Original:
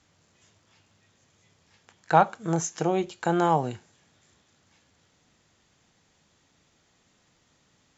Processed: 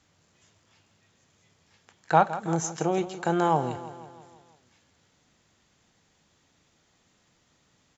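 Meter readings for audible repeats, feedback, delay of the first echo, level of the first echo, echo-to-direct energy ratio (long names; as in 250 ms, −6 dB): 5, 57%, 164 ms, −14.0 dB, −12.5 dB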